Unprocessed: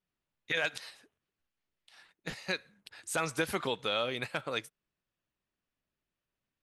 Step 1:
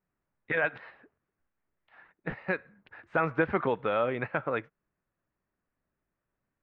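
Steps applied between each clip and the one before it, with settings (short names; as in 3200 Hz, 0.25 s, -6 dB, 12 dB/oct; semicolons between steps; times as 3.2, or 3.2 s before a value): LPF 1900 Hz 24 dB/oct; gain +6 dB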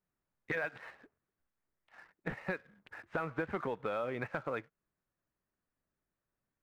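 compressor 4:1, threshold -34 dBFS, peak gain reduction 11.5 dB; sample leveller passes 1; gain -3 dB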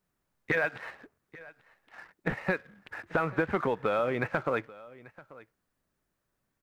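echo 0.837 s -20.5 dB; gain +8 dB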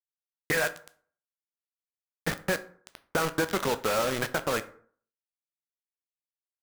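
bit-crush 5-bit; on a send at -10.5 dB: reverb RT60 0.50 s, pre-delay 7 ms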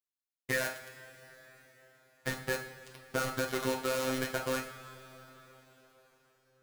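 robotiser 130 Hz; two-slope reverb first 0.45 s, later 4.6 s, from -18 dB, DRR 2.5 dB; gain -3.5 dB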